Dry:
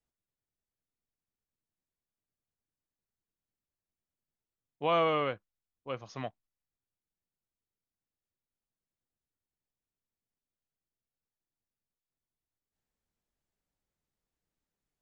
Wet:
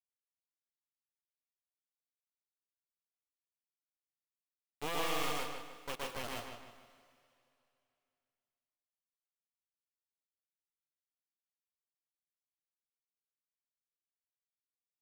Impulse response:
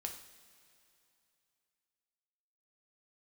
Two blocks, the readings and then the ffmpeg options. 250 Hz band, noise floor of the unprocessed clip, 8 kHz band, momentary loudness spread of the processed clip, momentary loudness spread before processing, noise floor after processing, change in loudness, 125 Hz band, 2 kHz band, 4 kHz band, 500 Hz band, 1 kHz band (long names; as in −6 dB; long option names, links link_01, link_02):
−6.0 dB, below −85 dBFS, can't be measured, 15 LU, 17 LU, below −85 dBFS, −7.0 dB, −8.0 dB, −1.5 dB, +1.0 dB, −10.0 dB, −7.0 dB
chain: -filter_complex "[0:a]equalizer=frequency=3600:width_type=o:width=2.3:gain=7,acrossover=split=310|3800[link_01][link_02][link_03];[link_01]acompressor=threshold=-46dB:ratio=4[link_04];[link_02]acompressor=threshold=-38dB:ratio=4[link_05];[link_03]acompressor=threshold=-59dB:ratio=4[link_06];[link_04][link_05][link_06]amix=inputs=3:normalize=0,acrusher=bits=4:dc=4:mix=0:aa=0.000001,asplit=2[link_07][link_08];[link_08]adelay=153,lowpass=frequency=4600:poles=1,volume=-7dB,asplit=2[link_09][link_10];[link_10]adelay=153,lowpass=frequency=4600:poles=1,volume=0.43,asplit=2[link_11][link_12];[link_12]adelay=153,lowpass=frequency=4600:poles=1,volume=0.43,asplit=2[link_13][link_14];[link_14]adelay=153,lowpass=frequency=4600:poles=1,volume=0.43,asplit=2[link_15][link_16];[link_16]adelay=153,lowpass=frequency=4600:poles=1,volume=0.43[link_17];[link_07][link_09][link_11][link_13][link_15][link_17]amix=inputs=6:normalize=0,asplit=2[link_18][link_19];[1:a]atrim=start_sample=2205,lowshelf=frequency=230:gain=-5.5,adelay=119[link_20];[link_19][link_20]afir=irnorm=-1:irlink=0,volume=3dB[link_21];[link_18][link_21]amix=inputs=2:normalize=0,volume=1dB"